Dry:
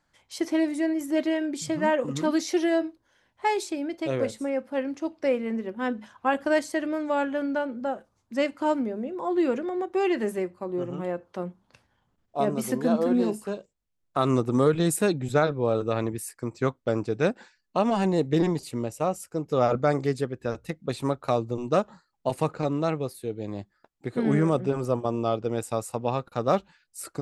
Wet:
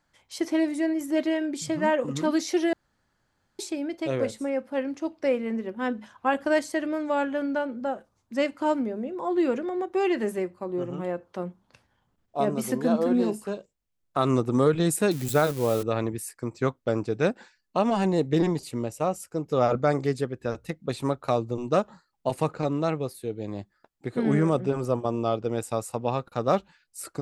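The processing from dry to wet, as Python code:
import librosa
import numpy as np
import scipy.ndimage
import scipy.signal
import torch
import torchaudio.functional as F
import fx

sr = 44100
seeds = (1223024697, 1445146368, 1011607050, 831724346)

y = fx.crossing_spikes(x, sr, level_db=-24.5, at=(15.11, 15.83))
y = fx.edit(y, sr, fx.room_tone_fill(start_s=2.73, length_s=0.86), tone=tone)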